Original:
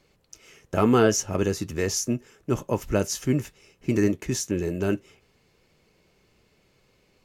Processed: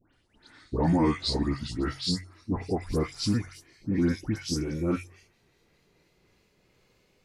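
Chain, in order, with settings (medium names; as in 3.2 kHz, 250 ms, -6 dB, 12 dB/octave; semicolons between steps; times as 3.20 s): pitch bend over the whole clip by -7 st ending unshifted; de-hum 45.33 Hz, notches 3; phase dispersion highs, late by 140 ms, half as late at 1.9 kHz; in parallel at -0.5 dB: peak limiter -17.5 dBFS, peak gain reduction 7 dB; on the sum: trim -7 dB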